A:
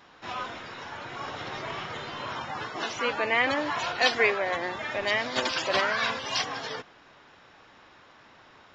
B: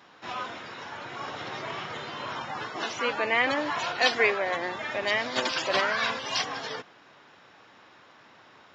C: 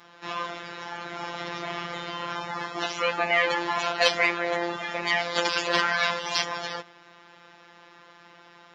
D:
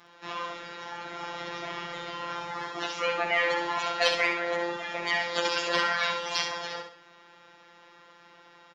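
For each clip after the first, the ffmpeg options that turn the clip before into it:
ffmpeg -i in.wav -af "highpass=110" out.wav
ffmpeg -i in.wav -af "acontrast=88,afftfilt=real='hypot(re,im)*cos(PI*b)':imag='0':win_size=1024:overlap=0.75,volume=-1.5dB" out.wav
ffmpeg -i in.wav -af "aecho=1:1:66|132|198|264:0.501|0.175|0.0614|0.0215,volume=-3.5dB" out.wav

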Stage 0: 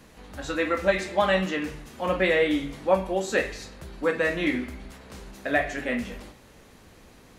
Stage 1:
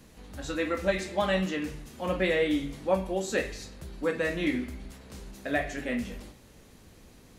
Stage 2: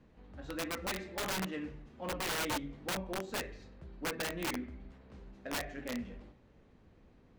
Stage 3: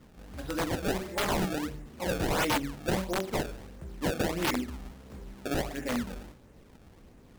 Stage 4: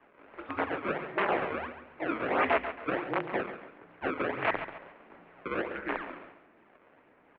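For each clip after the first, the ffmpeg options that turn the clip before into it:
ffmpeg -i in.wav -af "equalizer=frequency=1200:width=0.39:gain=-6.5" out.wav
ffmpeg -i in.wav -af "adynamicsmooth=sensitivity=2.5:basefreq=2400,aeval=exprs='(mod(13.3*val(0)+1,2)-1)/13.3':channel_layout=same,volume=-7.5dB" out.wav
ffmpeg -i in.wav -af "acrusher=samples=25:mix=1:aa=0.000001:lfo=1:lforange=40:lforate=1.5,volume=7.5dB" out.wav
ffmpeg -i in.wav -af "aecho=1:1:138|276|414|552:0.282|0.093|0.0307|0.0101,highpass=frequency=580:width_type=q:width=0.5412,highpass=frequency=580:width_type=q:width=1.307,lowpass=frequency=2700:width_type=q:width=0.5176,lowpass=frequency=2700:width_type=q:width=0.7071,lowpass=frequency=2700:width_type=q:width=1.932,afreqshift=-220,volume=4dB" out.wav

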